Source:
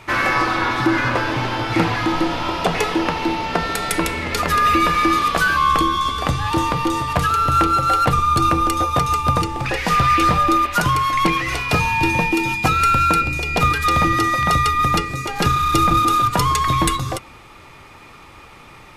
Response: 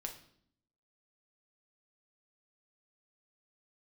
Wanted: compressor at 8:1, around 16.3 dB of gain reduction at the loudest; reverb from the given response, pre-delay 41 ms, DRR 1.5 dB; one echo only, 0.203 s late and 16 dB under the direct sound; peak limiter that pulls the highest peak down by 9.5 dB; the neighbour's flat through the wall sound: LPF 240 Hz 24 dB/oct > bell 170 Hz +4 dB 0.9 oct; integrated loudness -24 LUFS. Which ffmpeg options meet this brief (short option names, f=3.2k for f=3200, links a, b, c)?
-filter_complex "[0:a]acompressor=threshold=-30dB:ratio=8,alimiter=level_in=2.5dB:limit=-24dB:level=0:latency=1,volume=-2.5dB,aecho=1:1:203:0.158,asplit=2[a][b];[1:a]atrim=start_sample=2205,adelay=41[c];[b][c]afir=irnorm=-1:irlink=0,volume=0.5dB[d];[a][d]amix=inputs=2:normalize=0,lowpass=f=240:w=0.5412,lowpass=f=240:w=1.3066,equalizer=f=170:t=o:w=0.9:g=4,volume=16.5dB"